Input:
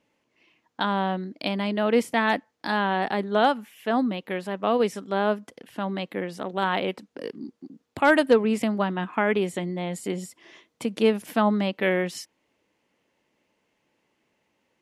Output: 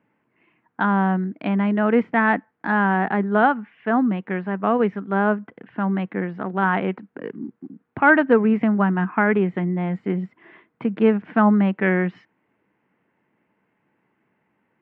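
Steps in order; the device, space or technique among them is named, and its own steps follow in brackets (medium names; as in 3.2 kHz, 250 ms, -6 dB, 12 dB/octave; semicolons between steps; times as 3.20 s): bass cabinet (cabinet simulation 83–2100 Hz, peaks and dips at 130 Hz +5 dB, 190 Hz +5 dB, 550 Hz -7 dB, 1.5 kHz +4 dB); trim +4 dB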